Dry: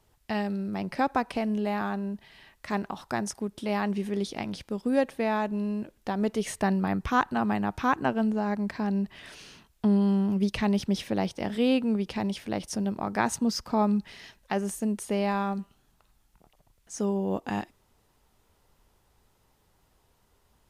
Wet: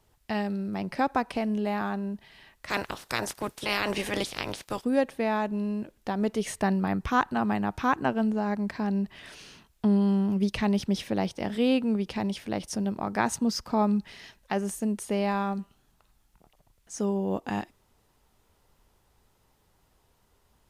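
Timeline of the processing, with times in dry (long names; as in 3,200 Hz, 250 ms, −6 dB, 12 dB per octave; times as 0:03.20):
0:02.68–0:04.83: ceiling on every frequency bin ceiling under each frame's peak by 24 dB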